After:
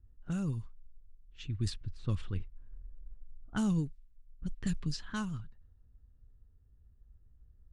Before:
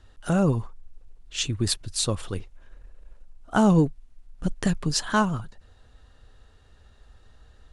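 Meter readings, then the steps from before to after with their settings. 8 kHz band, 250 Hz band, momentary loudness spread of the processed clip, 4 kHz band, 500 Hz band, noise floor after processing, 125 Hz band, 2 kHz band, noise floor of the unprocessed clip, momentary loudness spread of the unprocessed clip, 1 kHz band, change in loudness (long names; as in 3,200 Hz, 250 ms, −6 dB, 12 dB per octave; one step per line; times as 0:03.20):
−19.5 dB, −11.5 dB, 22 LU, −16.5 dB, −20.5 dB, −63 dBFS, −8.5 dB, −15.0 dB, −56 dBFS, 13 LU, −19.5 dB, −12.0 dB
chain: de-essing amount 55%
low-pass that shuts in the quiet parts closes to 570 Hz, open at −18.5 dBFS
speech leveller within 4 dB 0.5 s
guitar amp tone stack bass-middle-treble 6-0-2
level +7 dB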